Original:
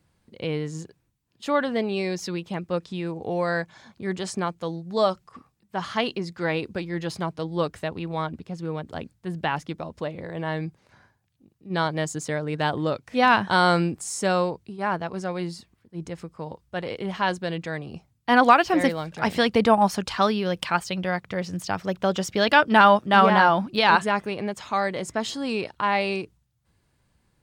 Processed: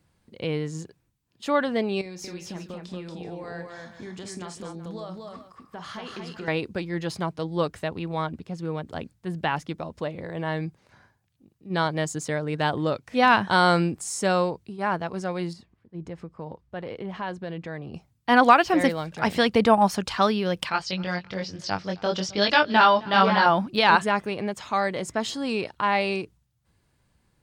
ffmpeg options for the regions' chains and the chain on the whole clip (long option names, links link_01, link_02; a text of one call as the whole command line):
ffmpeg -i in.wav -filter_complex "[0:a]asettb=1/sr,asplit=3[link_01][link_02][link_03];[link_01]atrim=end=2.014[link_04];[link_02]atrim=start=2.01:end=6.48,asetpts=PTS-STARTPTS,afade=type=in:duration=0.004:curve=qsin,afade=type=out:start_time=4.466:duration=0.004:curve=qsin,acompressor=threshold=-35dB:ratio=8:attack=3.2:release=140:knee=1:detection=peak,asplit=2[link_05][link_06];[link_06]adelay=28,volume=-13dB[link_07];[link_05][link_07]amix=inputs=2:normalize=0,atrim=end_sample=197127,aecho=1:1:48|232|379:0.237|0.708|0.224,atrim=end_sample=197127[link_08];[link_03]atrim=start=6.476[link_09];[link_04][link_08]acrossfade=duration=0.004:curve1=hsin:curve2=qsin[link_10];[link_10][link_09]acrossfade=duration=0.004:curve1=qsin:curve2=hsin,asettb=1/sr,asplit=3[link_11][link_12][link_13];[link_11]atrim=end=15.534[link_14];[link_12]atrim=start=15.53:end=17.94,asetpts=PTS-STARTPTS,afade=type=in:duration=0.004:curve=qsin,afade=type=out:start_time=2.406:duration=0.004:curve=qsin,lowpass=frequency=1800:poles=1,bandreject=frequency=1400:width=28,acompressor=threshold=-32dB:ratio=2:attack=3.2:release=140:knee=1:detection=peak[link_15];[link_13]atrim=start=17.936[link_16];[link_14][link_15]acrossfade=duration=0.004:curve1=hsin:curve2=qsin[link_17];[link_17][link_16]acrossfade=duration=0.004:curve1=qsin:curve2=hsin,asettb=1/sr,asplit=3[link_18][link_19][link_20];[link_18]atrim=end=20.694[link_21];[link_19]atrim=start=20.69:end=23.46,asetpts=PTS-STARTPTS,afade=type=in:duration=0.004:curve=qsin,afade=type=out:start_time=2.766:duration=0.004:curve=qsin,aecho=1:1:264|528:0.075|0.0232,atrim=end_sample=122157,flanger=delay=19.5:depth=3.4:speed=1.1,lowpass=frequency=4900:width_type=q:width=2.9[link_22];[link_20]atrim=start=23.456[link_23];[link_21][link_22]acrossfade=duration=0.004:curve1=hsin:curve2=qsin[link_24];[link_24][link_23]acrossfade=duration=0.004:curve1=qsin:curve2=hsin" out.wav